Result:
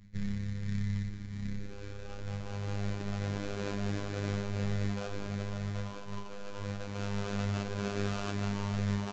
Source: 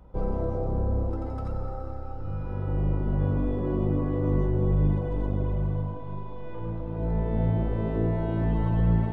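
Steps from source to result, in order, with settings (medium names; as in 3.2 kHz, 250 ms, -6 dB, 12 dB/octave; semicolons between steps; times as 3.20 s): reverb removal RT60 0.71 s; de-hum 122.9 Hz, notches 29; in parallel at 0 dB: peak limiter -26 dBFS, peak gain reduction 11 dB; on the sum: low-pass sweep 170 Hz -> 750 Hz, 1.26–2.34 s; sample-rate reducer 2 kHz, jitter 20%; robot voice 101 Hz; delay 639 ms -18 dB; on a send at -11.5 dB: reverberation RT60 0.65 s, pre-delay 3 ms; on the sum: resampled via 16 kHz; trim -8.5 dB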